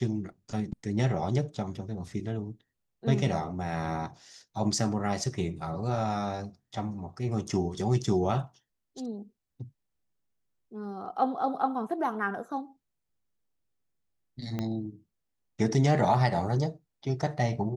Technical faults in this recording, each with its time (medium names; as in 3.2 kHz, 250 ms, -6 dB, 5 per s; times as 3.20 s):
14.59 s: pop -19 dBFS